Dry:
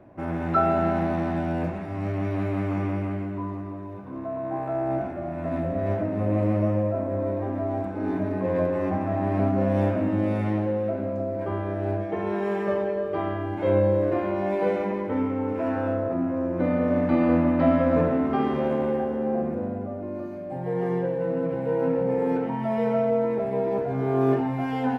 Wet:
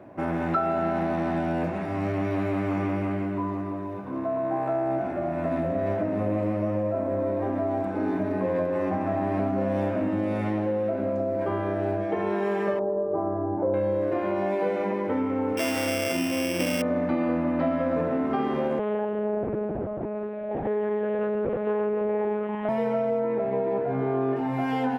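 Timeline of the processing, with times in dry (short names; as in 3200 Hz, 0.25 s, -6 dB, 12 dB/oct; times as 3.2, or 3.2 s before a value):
12.79–13.74 LPF 1000 Hz 24 dB/oct
15.57–16.82 sample sorter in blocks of 16 samples
18.79–22.69 monotone LPC vocoder at 8 kHz 210 Hz
23.2–24.36 LPF 3000 Hz
whole clip: HPF 180 Hz 6 dB/oct; compressor 4:1, threshold -29 dBFS; gain +5.5 dB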